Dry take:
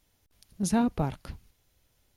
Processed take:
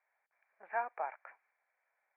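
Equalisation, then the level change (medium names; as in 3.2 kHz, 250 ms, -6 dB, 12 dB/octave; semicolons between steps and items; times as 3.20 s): high-pass 790 Hz 24 dB/octave; rippled Chebyshev low-pass 2.4 kHz, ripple 6 dB; +3.0 dB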